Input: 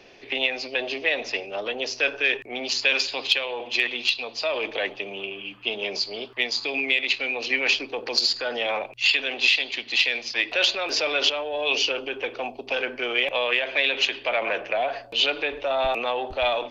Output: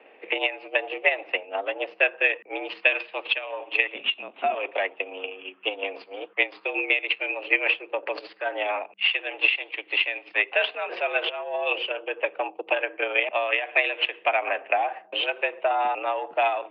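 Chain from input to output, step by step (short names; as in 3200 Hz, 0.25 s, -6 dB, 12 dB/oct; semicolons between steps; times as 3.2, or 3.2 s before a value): transient shaper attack +7 dB, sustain -6 dB; 3.94–4.54 LPC vocoder at 8 kHz pitch kept; mistuned SSB +76 Hz 160–2600 Hz; gain -1 dB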